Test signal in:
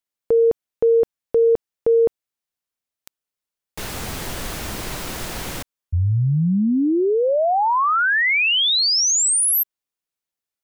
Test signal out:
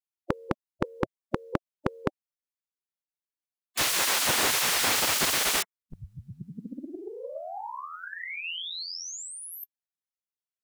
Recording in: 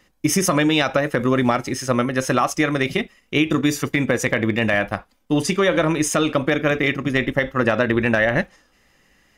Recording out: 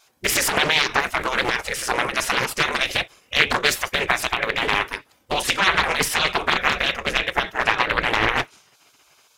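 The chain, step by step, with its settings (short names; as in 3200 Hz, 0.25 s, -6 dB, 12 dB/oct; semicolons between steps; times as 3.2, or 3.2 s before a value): spectral gate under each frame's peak -15 dB weak; Doppler distortion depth 0.87 ms; gain +9 dB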